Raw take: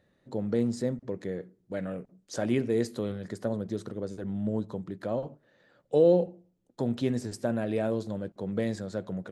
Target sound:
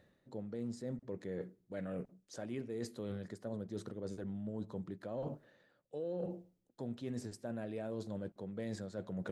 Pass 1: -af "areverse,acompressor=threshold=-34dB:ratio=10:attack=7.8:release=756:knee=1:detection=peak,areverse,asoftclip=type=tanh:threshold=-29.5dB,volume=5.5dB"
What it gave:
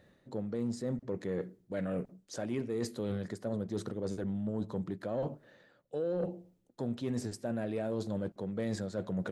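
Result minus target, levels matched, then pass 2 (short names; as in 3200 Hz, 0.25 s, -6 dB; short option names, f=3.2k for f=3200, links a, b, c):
compressor: peak gain reduction -7 dB
-af "areverse,acompressor=threshold=-42dB:ratio=10:attack=7.8:release=756:knee=1:detection=peak,areverse,asoftclip=type=tanh:threshold=-29.5dB,volume=5.5dB"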